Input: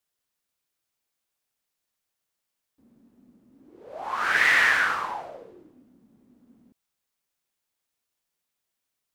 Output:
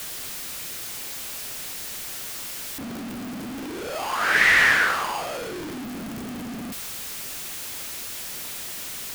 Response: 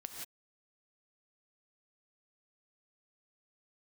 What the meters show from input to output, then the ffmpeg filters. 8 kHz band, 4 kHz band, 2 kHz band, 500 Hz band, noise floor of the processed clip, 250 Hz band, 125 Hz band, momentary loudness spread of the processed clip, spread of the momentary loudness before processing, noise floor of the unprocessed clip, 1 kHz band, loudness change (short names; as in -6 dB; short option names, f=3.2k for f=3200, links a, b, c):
+14.0 dB, +6.5 dB, +3.0 dB, +8.0 dB, -34 dBFS, +16.5 dB, n/a, 16 LU, 18 LU, -83 dBFS, +2.5 dB, -4.5 dB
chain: -filter_complex "[0:a]aeval=exprs='val(0)+0.5*0.0316*sgn(val(0))':c=same,acrossover=split=340|940|6400[a][b][c][d];[b]acrusher=samples=23:mix=1:aa=0.000001[e];[a][e][c][d]amix=inputs=4:normalize=0,volume=2.5dB"